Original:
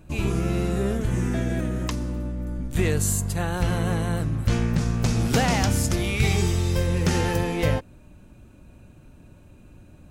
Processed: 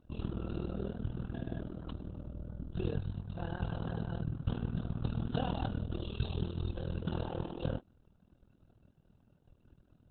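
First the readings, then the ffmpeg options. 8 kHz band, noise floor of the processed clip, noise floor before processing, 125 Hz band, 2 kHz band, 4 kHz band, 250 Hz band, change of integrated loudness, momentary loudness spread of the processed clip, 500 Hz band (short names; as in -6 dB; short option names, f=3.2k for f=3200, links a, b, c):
under -40 dB, -69 dBFS, -50 dBFS, -13.5 dB, -21.0 dB, -17.0 dB, -13.5 dB, -14.5 dB, 8 LU, -14.5 dB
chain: -af "asuperstop=centerf=2100:order=20:qfactor=2.2,tremolo=f=40:d=0.889,volume=-7.5dB" -ar 48000 -c:a libopus -b:a 8k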